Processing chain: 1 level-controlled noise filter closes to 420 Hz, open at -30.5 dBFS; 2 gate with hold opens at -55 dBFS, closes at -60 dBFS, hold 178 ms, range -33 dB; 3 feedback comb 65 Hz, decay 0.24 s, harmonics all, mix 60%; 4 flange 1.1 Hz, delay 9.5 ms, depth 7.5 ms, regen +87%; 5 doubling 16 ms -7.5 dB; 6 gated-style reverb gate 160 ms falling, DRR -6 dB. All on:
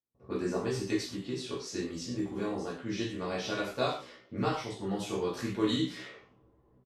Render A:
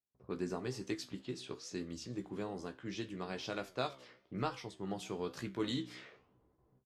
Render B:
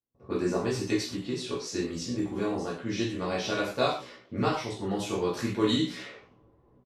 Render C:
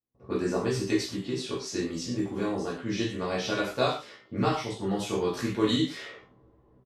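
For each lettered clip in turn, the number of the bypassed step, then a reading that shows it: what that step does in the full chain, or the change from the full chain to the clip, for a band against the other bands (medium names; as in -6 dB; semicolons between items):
6, crest factor change +2.0 dB; 3, loudness change +4.0 LU; 4, loudness change +4.5 LU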